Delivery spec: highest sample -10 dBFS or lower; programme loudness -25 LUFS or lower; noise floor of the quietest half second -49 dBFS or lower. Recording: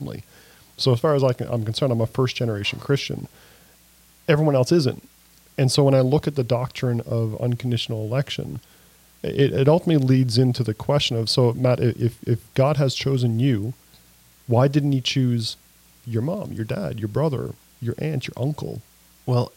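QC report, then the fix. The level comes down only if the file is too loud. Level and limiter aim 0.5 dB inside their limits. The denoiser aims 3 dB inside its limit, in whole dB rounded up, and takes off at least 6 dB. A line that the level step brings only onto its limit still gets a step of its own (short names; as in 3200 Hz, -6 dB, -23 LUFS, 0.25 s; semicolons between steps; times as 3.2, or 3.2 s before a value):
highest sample -5.0 dBFS: fail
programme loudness -22.0 LUFS: fail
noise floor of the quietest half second -54 dBFS: OK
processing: gain -3.5 dB; limiter -10.5 dBFS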